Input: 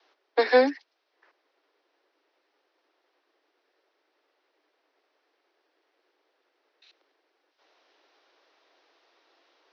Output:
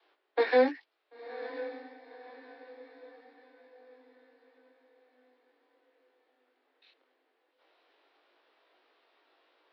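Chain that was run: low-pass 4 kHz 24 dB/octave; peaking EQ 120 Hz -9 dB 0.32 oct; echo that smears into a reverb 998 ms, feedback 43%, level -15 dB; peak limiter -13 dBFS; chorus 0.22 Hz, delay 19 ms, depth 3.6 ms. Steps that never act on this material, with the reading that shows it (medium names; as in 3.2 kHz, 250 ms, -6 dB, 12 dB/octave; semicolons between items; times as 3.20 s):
peaking EQ 120 Hz: input has nothing below 230 Hz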